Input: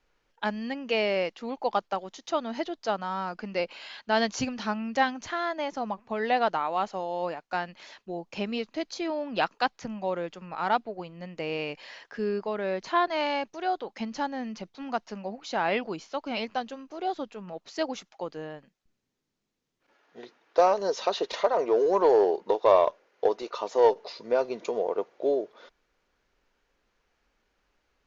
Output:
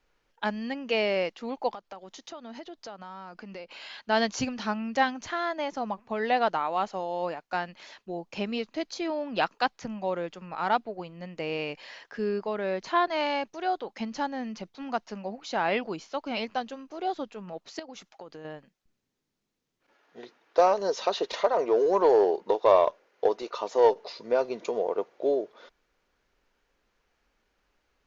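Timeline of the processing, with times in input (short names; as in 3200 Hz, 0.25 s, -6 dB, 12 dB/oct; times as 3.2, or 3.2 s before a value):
1.74–3.72 compressor 4:1, threshold -40 dBFS
17.79–18.45 compressor 8:1, threshold -39 dBFS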